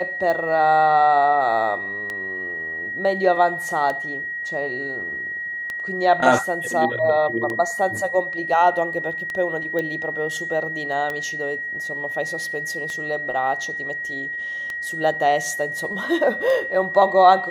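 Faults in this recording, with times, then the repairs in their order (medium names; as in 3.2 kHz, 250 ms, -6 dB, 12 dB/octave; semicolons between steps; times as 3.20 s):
tick 33 1/3 rpm -14 dBFS
whine 1.9 kHz -26 dBFS
9.79 s: pop -14 dBFS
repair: de-click; band-stop 1.9 kHz, Q 30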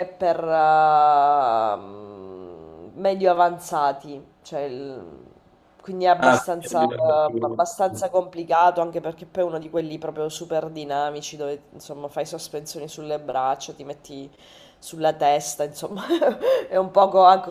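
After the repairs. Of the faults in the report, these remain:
nothing left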